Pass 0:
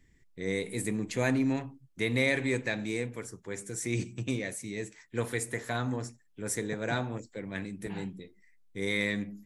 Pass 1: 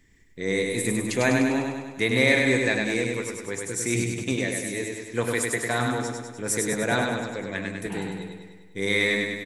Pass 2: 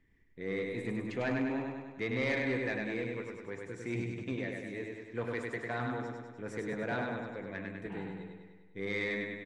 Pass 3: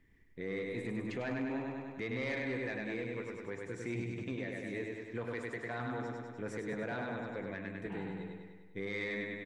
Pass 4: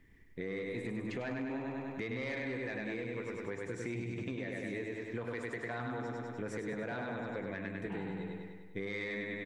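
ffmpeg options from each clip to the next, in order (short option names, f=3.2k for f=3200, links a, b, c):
-af "lowshelf=f=220:g=-6,aecho=1:1:100|200|300|400|500|600|700|800|900:0.668|0.401|0.241|0.144|0.0866|0.052|0.0312|0.0187|0.0112,volume=7dB"
-af "lowpass=2.4k,asoftclip=type=tanh:threshold=-15.5dB,volume=-9dB"
-af "alimiter=level_in=8.5dB:limit=-24dB:level=0:latency=1:release=354,volume=-8.5dB,volume=2.5dB"
-af "acompressor=threshold=-40dB:ratio=6,volume=4.5dB"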